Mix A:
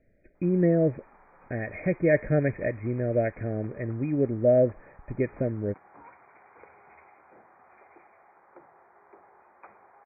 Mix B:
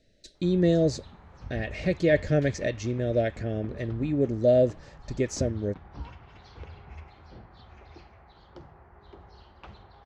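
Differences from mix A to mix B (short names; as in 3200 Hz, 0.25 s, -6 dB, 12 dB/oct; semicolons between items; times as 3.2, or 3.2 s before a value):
background: remove HPF 450 Hz 12 dB/oct; master: remove brick-wall FIR low-pass 2500 Hz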